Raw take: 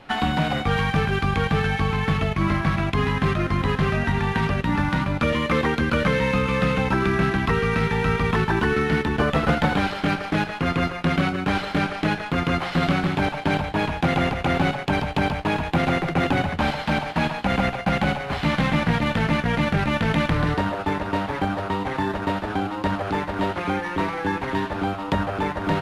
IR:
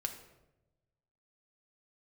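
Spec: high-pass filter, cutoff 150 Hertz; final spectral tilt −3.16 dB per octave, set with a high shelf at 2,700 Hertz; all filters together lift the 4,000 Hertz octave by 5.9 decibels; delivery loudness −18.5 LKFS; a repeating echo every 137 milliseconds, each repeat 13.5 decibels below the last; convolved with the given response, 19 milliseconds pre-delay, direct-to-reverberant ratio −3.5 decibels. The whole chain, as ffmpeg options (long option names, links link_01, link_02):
-filter_complex "[0:a]highpass=150,highshelf=frequency=2700:gain=5.5,equalizer=frequency=4000:width_type=o:gain=3.5,aecho=1:1:137|274:0.211|0.0444,asplit=2[link_01][link_02];[1:a]atrim=start_sample=2205,adelay=19[link_03];[link_02][link_03]afir=irnorm=-1:irlink=0,volume=3dB[link_04];[link_01][link_04]amix=inputs=2:normalize=0,volume=-1.5dB"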